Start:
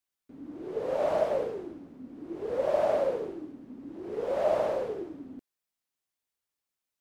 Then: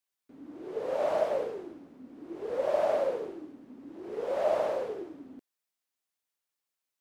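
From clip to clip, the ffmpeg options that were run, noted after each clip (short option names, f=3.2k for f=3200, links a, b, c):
-af "lowshelf=f=210:g=-10"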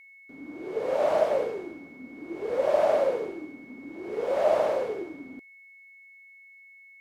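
-af "aeval=exprs='val(0)+0.002*sin(2*PI*2200*n/s)':c=same,volume=4.5dB"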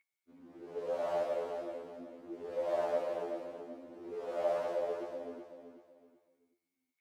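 -af "aecho=1:1:379|758|1137|1516:0.447|0.143|0.0457|0.0146,afftfilt=real='re*2*eq(mod(b,4),0)':imag='im*2*eq(mod(b,4),0)':win_size=2048:overlap=0.75,volume=-8.5dB"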